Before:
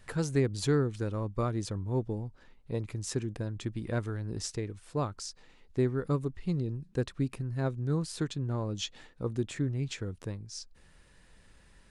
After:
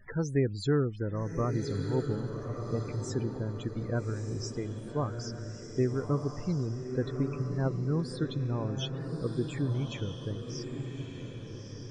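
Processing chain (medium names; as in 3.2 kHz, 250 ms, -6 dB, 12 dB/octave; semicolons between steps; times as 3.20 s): word length cut 10-bit, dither none; loudest bins only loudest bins 32; echo that smears into a reverb 1247 ms, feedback 42%, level -6 dB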